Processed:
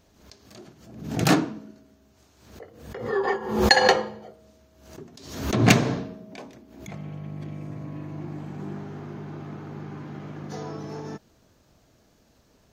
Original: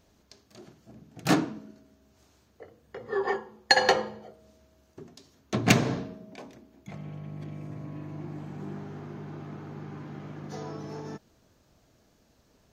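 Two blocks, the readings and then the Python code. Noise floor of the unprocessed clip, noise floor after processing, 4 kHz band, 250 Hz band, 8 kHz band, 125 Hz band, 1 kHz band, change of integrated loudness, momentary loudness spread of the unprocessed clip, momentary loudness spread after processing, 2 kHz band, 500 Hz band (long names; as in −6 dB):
−65 dBFS, −61 dBFS, +3.5 dB, +5.0 dB, +4.0 dB, +5.5 dB, +4.0 dB, +4.5 dB, 23 LU, 23 LU, +3.5 dB, +5.0 dB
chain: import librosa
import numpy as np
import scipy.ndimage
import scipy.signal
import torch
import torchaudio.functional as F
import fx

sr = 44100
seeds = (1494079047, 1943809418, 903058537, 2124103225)

y = fx.pre_swell(x, sr, db_per_s=75.0)
y = y * librosa.db_to_amplitude(3.0)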